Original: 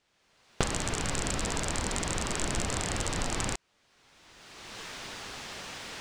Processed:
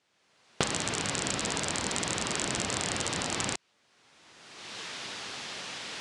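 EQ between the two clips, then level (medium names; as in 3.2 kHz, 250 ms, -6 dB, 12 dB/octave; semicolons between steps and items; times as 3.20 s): high-pass 120 Hz 12 dB/octave; steep low-pass 11 kHz 96 dB/octave; dynamic bell 3.7 kHz, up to +4 dB, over -51 dBFS, Q 0.8; 0.0 dB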